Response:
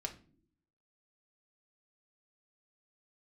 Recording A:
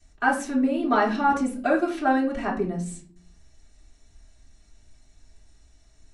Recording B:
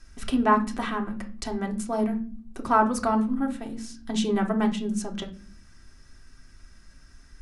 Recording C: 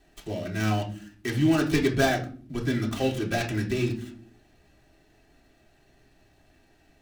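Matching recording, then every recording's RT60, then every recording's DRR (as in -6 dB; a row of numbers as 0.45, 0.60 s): B; not exponential, not exponential, not exponential; -12.0, 1.5, -3.5 dB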